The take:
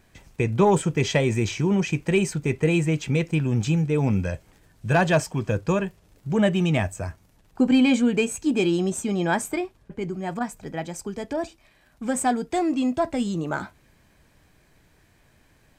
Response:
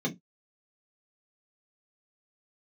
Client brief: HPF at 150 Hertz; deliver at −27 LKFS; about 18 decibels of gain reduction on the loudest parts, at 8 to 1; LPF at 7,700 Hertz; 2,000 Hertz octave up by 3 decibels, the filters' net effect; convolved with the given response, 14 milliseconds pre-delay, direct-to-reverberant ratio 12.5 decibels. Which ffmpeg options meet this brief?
-filter_complex "[0:a]highpass=150,lowpass=7700,equalizer=frequency=2000:width_type=o:gain=4,acompressor=threshold=-34dB:ratio=8,asplit=2[link_01][link_02];[1:a]atrim=start_sample=2205,adelay=14[link_03];[link_02][link_03]afir=irnorm=-1:irlink=0,volume=-19dB[link_04];[link_01][link_04]amix=inputs=2:normalize=0,volume=9.5dB"

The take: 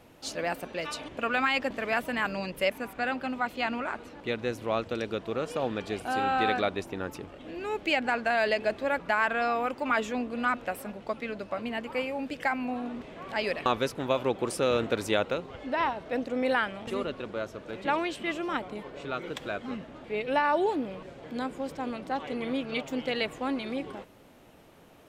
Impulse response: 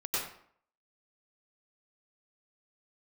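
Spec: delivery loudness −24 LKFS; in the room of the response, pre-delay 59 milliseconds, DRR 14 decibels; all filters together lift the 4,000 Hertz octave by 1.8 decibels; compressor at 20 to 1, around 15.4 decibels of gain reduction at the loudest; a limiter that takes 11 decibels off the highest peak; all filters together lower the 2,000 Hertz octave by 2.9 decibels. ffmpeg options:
-filter_complex "[0:a]equalizer=frequency=2000:width_type=o:gain=-5,equalizer=frequency=4000:width_type=o:gain=4.5,acompressor=threshold=-37dB:ratio=20,alimiter=level_in=10dB:limit=-24dB:level=0:latency=1,volume=-10dB,asplit=2[link_01][link_02];[1:a]atrim=start_sample=2205,adelay=59[link_03];[link_02][link_03]afir=irnorm=-1:irlink=0,volume=-20dB[link_04];[link_01][link_04]amix=inputs=2:normalize=0,volume=20dB"

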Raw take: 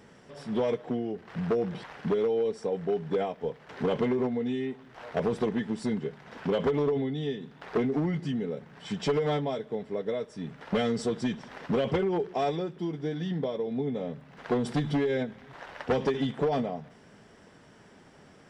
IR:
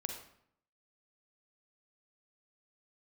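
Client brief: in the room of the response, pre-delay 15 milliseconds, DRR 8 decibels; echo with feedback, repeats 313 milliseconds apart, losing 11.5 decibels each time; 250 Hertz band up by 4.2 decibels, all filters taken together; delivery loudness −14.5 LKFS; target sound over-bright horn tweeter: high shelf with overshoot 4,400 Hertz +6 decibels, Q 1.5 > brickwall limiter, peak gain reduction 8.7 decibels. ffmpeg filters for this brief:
-filter_complex "[0:a]equalizer=frequency=250:width_type=o:gain=5,aecho=1:1:313|626|939:0.266|0.0718|0.0194,asplit=2[link_01][link_02];[1:a]atrim=start_sample=2205,adelay=15[link_03];[link_02][link_03]afir=irnorm=-1:irlink=0,volume=-8dB[link_04];[link_01][link_04]amix=inputs=2:normalize=0,highshelf=frequency=4400:width_type=q:width=1.5:gain=6,volume=16.5dB,alimiter=limit=-5.5dB:level=0:latency=1"

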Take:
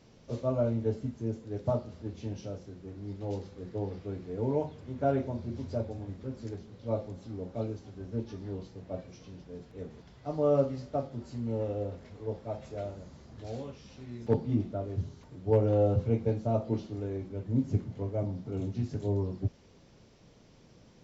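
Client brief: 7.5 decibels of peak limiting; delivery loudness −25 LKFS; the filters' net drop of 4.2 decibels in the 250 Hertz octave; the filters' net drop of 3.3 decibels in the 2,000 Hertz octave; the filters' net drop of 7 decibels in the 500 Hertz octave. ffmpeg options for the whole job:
ffmpeg -i in.wav -af "equalizer=frequency=250:width_type=o:gain=-3,equalizer=frequency=500:width_type=o:gain=-7.5,equalizer=frequency=2000:width_type=o:gain=-4,volume=13.5dB,alimiter=limit=-11dB:level=0:latency=1" out.wav

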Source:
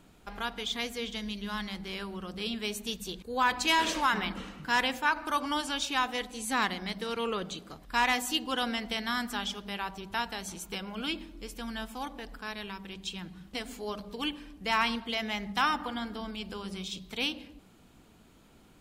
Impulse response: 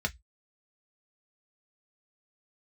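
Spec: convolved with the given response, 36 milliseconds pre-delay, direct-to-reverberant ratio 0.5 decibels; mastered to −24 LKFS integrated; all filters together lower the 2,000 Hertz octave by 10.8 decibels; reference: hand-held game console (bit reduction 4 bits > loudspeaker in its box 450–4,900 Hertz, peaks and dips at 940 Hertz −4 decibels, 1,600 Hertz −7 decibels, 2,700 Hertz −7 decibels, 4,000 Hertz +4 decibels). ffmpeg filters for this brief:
-filter_complex "[0:a]equalizer=frequency=2000:width_type=o:gain=-7.5,asplit=2[link_01][link_02];[1:a]atrim=start_sample=2205,adelay=36[link_03];[link_02][link_03]afir=irnorm=-1:irlink=0,volume=-6.5dB[link_04];[link_01][link_04]amix=inputs=2:normalize=0,acrusher=bits=3:mix=0:aa=0.000001,highpass=450,equalizer=frequency=940:width_type=q:width=4:gain=-4,equalizer=frequency=1600:width_type=q:width=4:gain=-7,equalizer=frequency=2700:width_type=q:width=4:gain=-7,equalizer=frequency=4000:width_type=q:width=4:gain=4,lowpass=frequency=4900:width=0.5412,lowpass=frequency=4900:width=1.3066,volume=9dB"

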